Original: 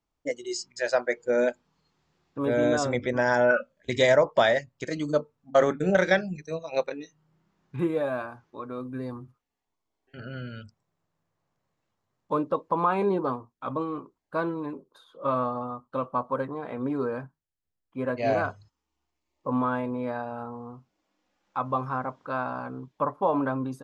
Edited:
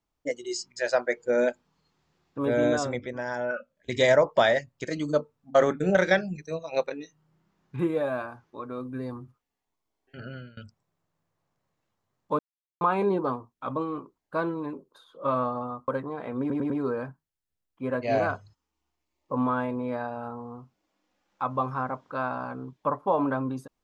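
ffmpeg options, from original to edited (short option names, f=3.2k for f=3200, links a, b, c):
-filter_complex "[0:a]asplit=10[a][b][c][d][e][f][g][h][i][j];[a]atrim=end=3.14,asetpts=PTS-STARTPTS,afade=t=out:st=2.67:d=0.47:silence=0.354813[k];[b]atrim=start=3.14:end=3.61,asetpts=PTS-STARTPTS,volume=-9dB[l];[c]atrim=start=3.61:end=10.57,asetpts=PTS-STARTPTS,afade=t=in:d=0.47:silence=0.354813,afade=t=out:st=6.65:d=0.31:silence=0.0749894[m];[d]atrim=start=10.57:end=12.39,asetpts=PTS-STARTPTS,afade=t=in:d=0.004:c=hsin:silence=0.0749894,afade=t=out:st=1.816:d=0.004:c=hsin[n];[e]atrim=start=12.39:end=12.81,asetpts=PTS-STARTPTS,volume=0[o];[f]atrim=start=12.81:end=15.882,asetpts=PTS-STARTPTS,afade=t=in:d=0.004:c=hsin[p];[g]atrim=start=16.328:end=16.952[q];[h]atrim=start=16.848:end=16.952[r];[i]atrim=start=16.848:end=16.952[s];[j]atrim=start=16.848[t];[k][l][m][n][o][p]concat=n=6:v=0:a=1[u];[u][q]acrossfade=d=0.004:c1=hsin:c2=hsin[v];[v][r]acrossfade=d=0.004:c1=hsin:c2=hsin[w];[w][s]acrossfade=d=0.004:c1=hsin:c2=hsin[x];[x][t]acrossfade=d=0.004:c1=hsin:c2=hsin"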